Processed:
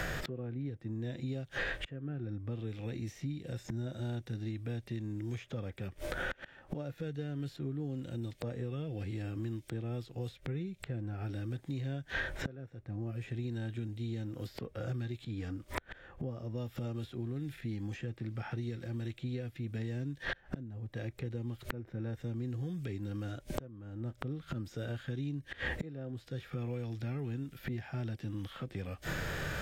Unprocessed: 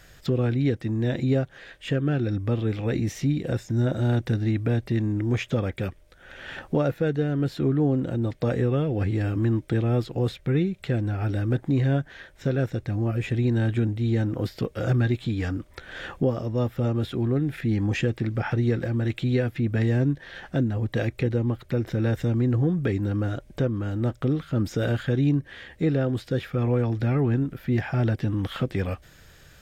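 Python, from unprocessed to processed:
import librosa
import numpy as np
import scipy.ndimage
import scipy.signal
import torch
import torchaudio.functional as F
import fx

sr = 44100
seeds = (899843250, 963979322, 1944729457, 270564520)

y = fx.gate_flip(x, sr, shuts_db=-31.0, range_db=-38)
y = fx.hpss(y, sr, part='harmonic', gain_db=8)
y = fx.band_squash(y, sr, depth_pct=100)
y = y * librosa.db_to_amplitude(14.5)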